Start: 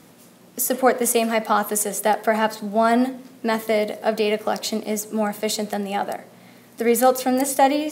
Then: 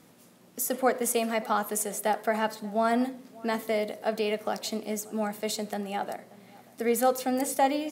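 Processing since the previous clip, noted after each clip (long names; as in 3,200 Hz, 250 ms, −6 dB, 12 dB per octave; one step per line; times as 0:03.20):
slap from a distant wall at 100 metres, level −22 dB
level −7.5 dB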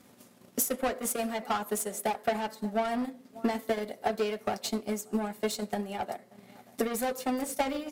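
soft clipping −28 dBFS, distortion −8 dB
notch comb filter 160 Hz
transient designer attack +11 dB, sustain −6 dB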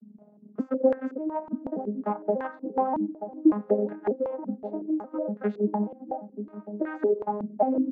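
vocoder with an arpeggio as carrier major triad, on G#3, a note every 586 ms
slap from a distant wall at 160 metres, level −11 dB
low-pass on a step sequencer 5.4 Hz 240–1,600 Hz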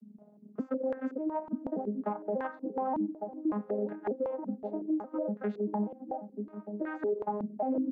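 brickwall limiter −21 dBFS, peak gain reduction 11.5 dB
level −2.5 dB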